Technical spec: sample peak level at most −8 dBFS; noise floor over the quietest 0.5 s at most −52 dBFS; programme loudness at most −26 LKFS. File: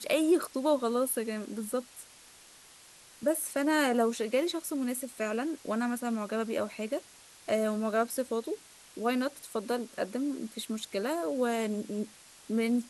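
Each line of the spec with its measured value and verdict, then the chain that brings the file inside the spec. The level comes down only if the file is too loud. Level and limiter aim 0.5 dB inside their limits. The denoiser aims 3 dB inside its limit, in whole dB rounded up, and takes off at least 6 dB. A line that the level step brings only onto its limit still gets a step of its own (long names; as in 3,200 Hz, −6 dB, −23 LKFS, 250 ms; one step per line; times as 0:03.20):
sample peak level −16.0 dBFS: in spec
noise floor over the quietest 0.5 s −55 dBFS: in spec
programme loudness −31.5 LKFS: in spec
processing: no processing needed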